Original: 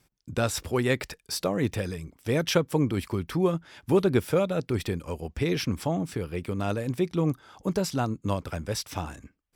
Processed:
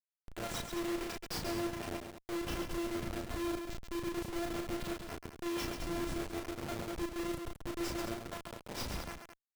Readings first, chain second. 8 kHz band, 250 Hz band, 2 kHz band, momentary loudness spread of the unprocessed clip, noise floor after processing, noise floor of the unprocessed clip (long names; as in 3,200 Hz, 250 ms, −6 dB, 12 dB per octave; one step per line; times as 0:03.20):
−8.5 dB, −10.0 dB, −8.5 dB, 9 LU, below −85 dBFS, −69 dBFS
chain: parametric band 1,800 Hz −7.5 dB 0.21 octaves
reversed playback
downward compressor 10 to 1, threshold −33 dBFS, peak gain reduction 16.5 dB
reversed playback
phases set to zero 342 Hz
rotating-speaker cabinet horn 8 Hz
comparator with hysteresis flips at −47 dBFS
on a send: loudspeakers that aren't time-aligned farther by 12 metres −3 dB, 47 metres −6 dB, 74 metres −9 dB
on the sum: level +3.5 dB